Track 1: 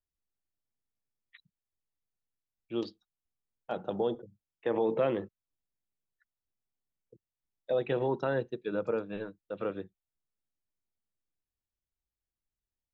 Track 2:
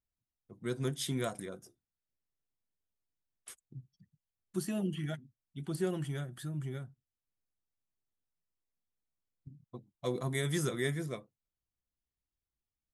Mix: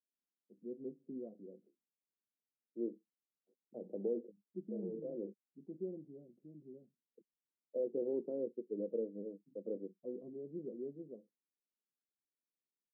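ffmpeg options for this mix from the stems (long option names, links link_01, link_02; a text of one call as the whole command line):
ffmpeg -i stem1.wav -i stem2.wav -filter_complex "[0:a]adelay=50,volume=-5.5dB[link_01];[1:a]volume=-8dB,asplit=2[link_02][link_03];[link_03]apad=whole_len=572555[link_04];[link_01][link_04]sidechaincompress=threshold=-50dB:ratio=10:attack=38:release=201[link_05];[link_05][link_02]amix=inputs=2:normalize=0,asuperpass=centerf=320:order=8:qfactor=0.94" out.wav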